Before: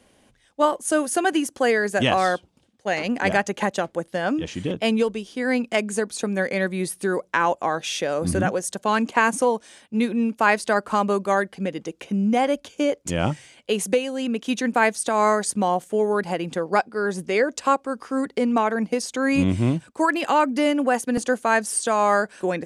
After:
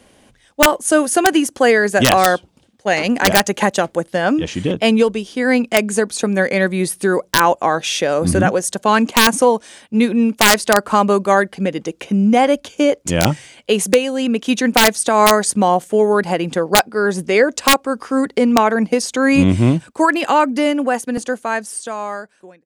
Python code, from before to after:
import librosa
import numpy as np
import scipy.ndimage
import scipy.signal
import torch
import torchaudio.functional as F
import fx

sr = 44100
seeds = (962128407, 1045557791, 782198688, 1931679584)

y = fx.fade_out_tail(x, sr, length_s=2.95)
y = fx.high_shelf(y, sr, hz=6200.0, db=5.5, at=(2.9, 4.01))
y = (np.mod(10.0 ** (8.5 / 20.0) * y + 1.0, 2.0) - 1.0) / 10.0 ** (8.5 / 20.0)
y = y * 10.0 ** (7.5 / 20.0)